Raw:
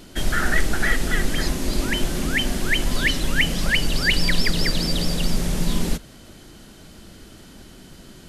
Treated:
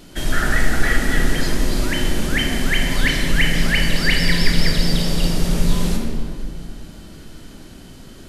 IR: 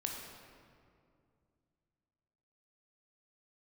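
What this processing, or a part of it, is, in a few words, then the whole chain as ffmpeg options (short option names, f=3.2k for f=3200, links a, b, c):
stairwell: -filter_complex "[1:a]atrim=start_sample=2205[a];[0:a][a]afir=irnorm=-1:irlink=0,volume=1.5dB"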